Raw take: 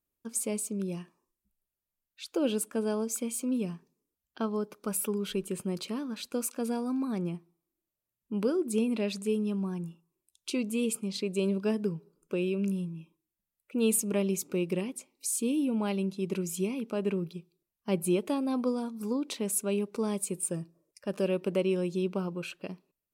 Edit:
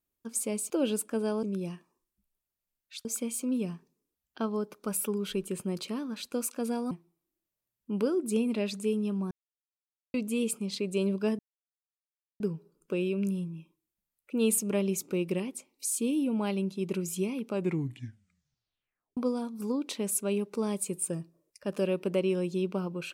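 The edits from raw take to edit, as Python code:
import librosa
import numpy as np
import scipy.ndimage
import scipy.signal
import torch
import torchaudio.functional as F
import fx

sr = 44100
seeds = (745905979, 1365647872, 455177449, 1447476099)

y = fx.edit(x, sr, fx.move(start_s=2.32, length_s=0.73, to_s=0.7),
    fx.cut(start_s=6.91, length_s=0.42),
    fx.silence(start_s=9.73, length_s=0.83),
    fx.insert_silence(at_s=11.81, length_s=1.01),
    fx.tape_stop(start_s=16.91, length_s=1.67), tone=tone)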